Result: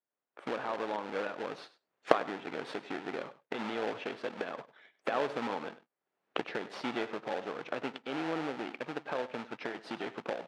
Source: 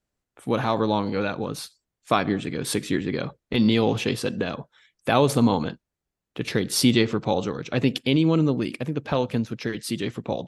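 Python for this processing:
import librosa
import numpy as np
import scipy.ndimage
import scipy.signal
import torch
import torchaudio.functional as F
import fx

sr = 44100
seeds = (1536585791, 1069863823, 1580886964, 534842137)

p1 = fx.tracing_dist(x, sr, depth_ms=0.044)
p2 = fx.recorder_agc(p1, sr, target_db=-11.5, rise_db_per_s=32.0, max_gain_db=30)
p3 = fx.high_shelf(p2, sr, hz=2200.0, db=-11.5)
p4 = fx.sample_hold(p3, sr, seeds[0], rate_hz=1100.0, jitter_pct=20)
p5 = p3 + (p4 * 10.0 ** (-4.5 / 20.0))
p6 = fx.bandpass_edges(p5, sr, low_hz=570.0, high_hz=3100.0)
p7 = p6 + fx.echo_single(p6, sr, ms=99, db=-17.0, dry=0)
y = p7 * 10.0 ** (-8.5 / 20.0)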